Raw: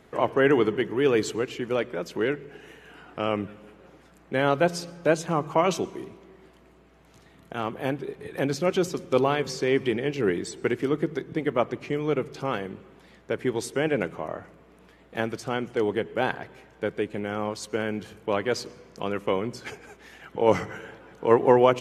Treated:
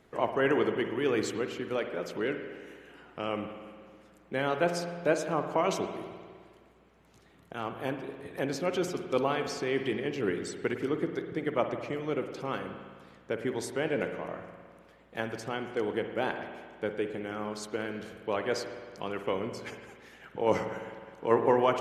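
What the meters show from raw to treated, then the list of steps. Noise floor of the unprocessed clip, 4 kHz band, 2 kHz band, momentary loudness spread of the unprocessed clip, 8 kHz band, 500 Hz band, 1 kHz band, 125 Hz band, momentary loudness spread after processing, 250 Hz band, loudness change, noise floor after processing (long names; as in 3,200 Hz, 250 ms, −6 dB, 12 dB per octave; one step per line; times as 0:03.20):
−55 dBFS, −4.5 dB, −4.5 dB, 15 LU, −5.0 dB, −5.5 dB, −5.0 dB, −7.0 dB, 15 LU, −5.5 dB, −5.5 dB, −59 dBFS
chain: harmonic and percussive parts rebalanced percussive +4 dB
spring reverb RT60 1.8 s, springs 52 ms, chirp 65 ms, DRR 6.5 dB
level −8.5 dB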